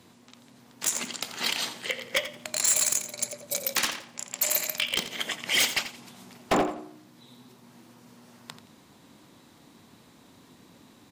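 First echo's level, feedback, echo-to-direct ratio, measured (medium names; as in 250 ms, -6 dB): -12.5 dB, 24%, -12.0 dB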